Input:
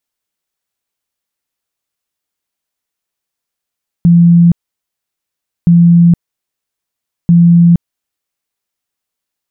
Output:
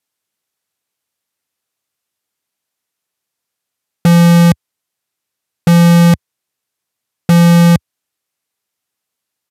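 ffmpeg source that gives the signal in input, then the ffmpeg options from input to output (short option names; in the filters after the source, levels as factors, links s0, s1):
-f lavfi -i "aevalsrc='0.75*sin(2*PI*171*mod(t,1.62))*lt(mod(t,1.62),80/171)':d=4.86:s=44100"
-filter_complex "[0:a]highpass=f=77:w=0.5412,highpass=f=77:w=1.3066,asplit=2[s0][s1];[s1]aeval=exprs='(mod(1.88*val(0)+1,2)-1)/1.88':c=same,volume=0.422[s2];[s0][s2]amix=inputs=2:normalize=0,aresample=32000,aresample=44100"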